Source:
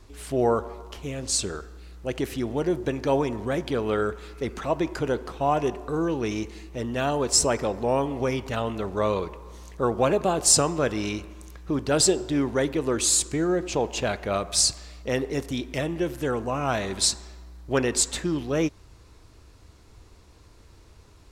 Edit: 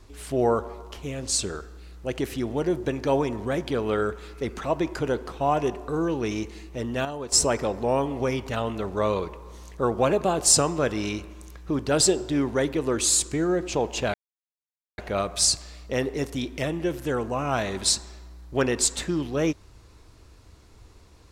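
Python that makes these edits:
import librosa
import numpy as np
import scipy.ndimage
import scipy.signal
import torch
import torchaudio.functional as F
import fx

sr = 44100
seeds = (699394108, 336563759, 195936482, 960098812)

y = fx.edit(x, sr, fx.clip_gain(start_s=7.05, length_s=0.27, db=-8.5),
    fx.insert_silence(at_s=14.14, length_s=0.84), tone=tone)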